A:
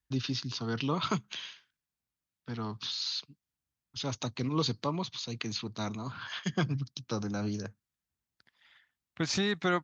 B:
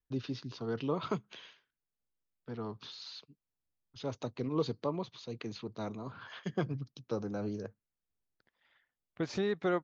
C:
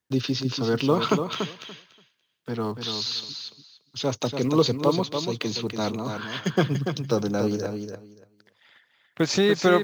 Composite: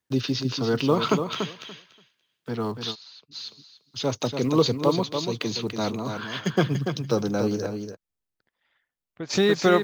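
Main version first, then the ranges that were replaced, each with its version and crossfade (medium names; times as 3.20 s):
C
2.93–3.34 s: from B, crossfade 0.06 s
7.94–9.31 s: from B, crossfade 0.06 s
not used: A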